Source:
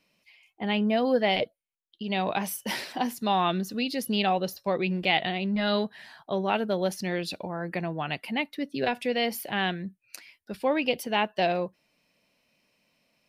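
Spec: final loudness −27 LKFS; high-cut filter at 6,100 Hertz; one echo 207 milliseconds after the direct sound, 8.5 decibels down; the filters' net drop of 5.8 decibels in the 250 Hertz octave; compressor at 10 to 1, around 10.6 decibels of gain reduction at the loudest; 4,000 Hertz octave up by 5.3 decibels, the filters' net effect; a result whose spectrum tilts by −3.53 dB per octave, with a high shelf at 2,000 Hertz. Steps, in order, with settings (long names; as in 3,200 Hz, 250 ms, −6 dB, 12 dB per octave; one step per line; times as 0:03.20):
low-pass filter 6,100 Hz
parametric band 250 Hz −8 dB
high-shelf EQ 2,000 Hz +4 dB
parametric band 4,000 Hz +4 dB
downward compressor 10 to 1, threshold −29 dBFS
single-tap delay 207 ms −8.5 dB
level +6.5 dB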